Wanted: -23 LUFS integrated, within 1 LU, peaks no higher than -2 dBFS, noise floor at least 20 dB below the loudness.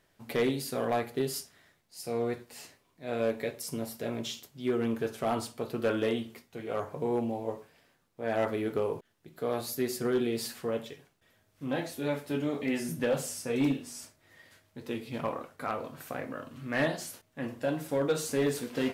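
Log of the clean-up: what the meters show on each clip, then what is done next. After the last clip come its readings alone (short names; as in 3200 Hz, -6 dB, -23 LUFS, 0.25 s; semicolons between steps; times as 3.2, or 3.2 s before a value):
clipped 0.4%; flat tops at -21.0 dBFS; loudness -33.0 LUFS; peak -21.0 dBFS; loudness target -23.0 LUFS
-> clip repair -21 dBFS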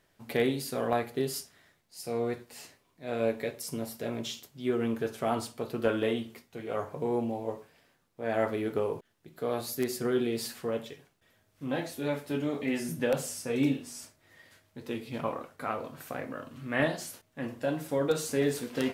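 clipped 0.0%; loudness -32.5 LUFS; peak -12.0 dBFS; loudness target -23.0 LUFS
-> gain +9.5 dB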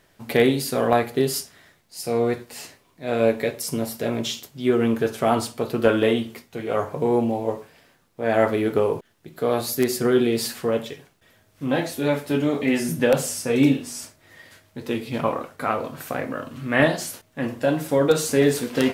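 loudness -23.0 LUFS; peak -2.5 dBFS; noise floor -61 dBFS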